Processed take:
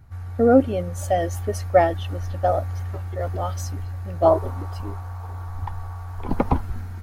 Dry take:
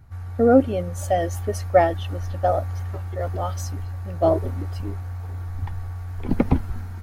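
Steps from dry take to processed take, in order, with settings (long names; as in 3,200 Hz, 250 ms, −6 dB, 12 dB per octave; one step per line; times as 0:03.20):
0:04.25–0:06.62: octave-band graphic EQ 125/250/1,000/2,000 Hz −3/−4/+10/−4 dB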